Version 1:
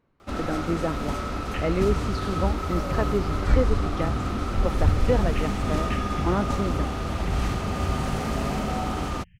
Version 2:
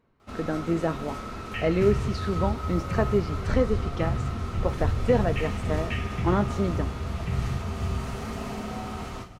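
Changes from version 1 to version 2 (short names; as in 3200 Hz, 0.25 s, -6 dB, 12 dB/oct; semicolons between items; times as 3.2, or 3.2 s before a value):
first sound -11.5 dB; second sound -4.0 dB; reverb: on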